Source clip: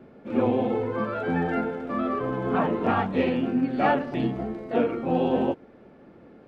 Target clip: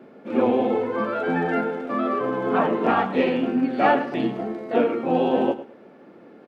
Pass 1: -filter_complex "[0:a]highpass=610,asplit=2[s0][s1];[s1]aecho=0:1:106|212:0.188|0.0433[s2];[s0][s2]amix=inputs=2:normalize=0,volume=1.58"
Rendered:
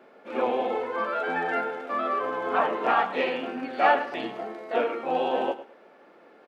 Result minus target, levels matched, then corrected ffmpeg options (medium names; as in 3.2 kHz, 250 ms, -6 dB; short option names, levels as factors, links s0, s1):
250 Hz band -8.5 dB
-filter_complex "[0:a]highpass=220,asplit=2[s0][s1];[s1]aecho=0:1:106|212:0.188|0.0433[s2];[s0][s2]amix=inputs=2:normalize=0,volume=1.58"